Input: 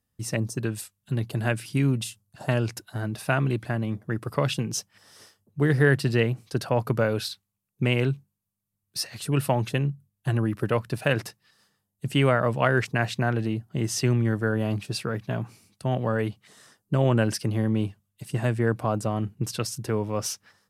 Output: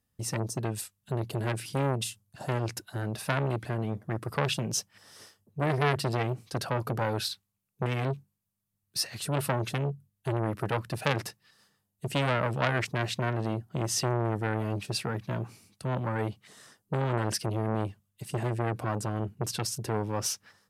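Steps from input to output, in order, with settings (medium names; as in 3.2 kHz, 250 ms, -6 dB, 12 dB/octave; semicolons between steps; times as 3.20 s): transformer saturation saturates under 1.7 kHz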